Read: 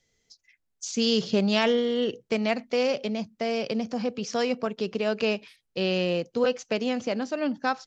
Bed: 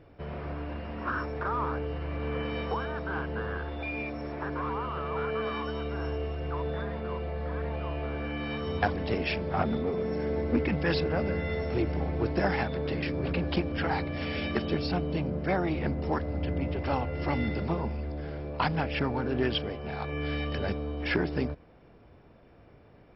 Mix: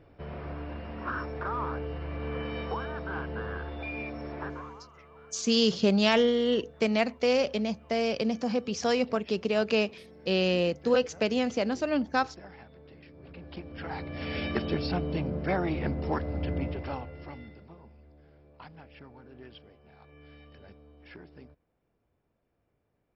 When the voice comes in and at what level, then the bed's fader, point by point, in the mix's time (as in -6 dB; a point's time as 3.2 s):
4.50 s, 0.0 dB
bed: 4.46 s -2 dB
4.91 s -21 dB
13.12 s -21 dB
14.36 s -0.5 dB
16.61 s -0.5 dB
17.65 s -21 dB